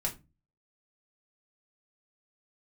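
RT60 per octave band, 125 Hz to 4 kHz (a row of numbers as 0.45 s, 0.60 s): 0.50 s, 0.45 s, 0.30 s, 0.25 s, 0.20 s, 0.20 s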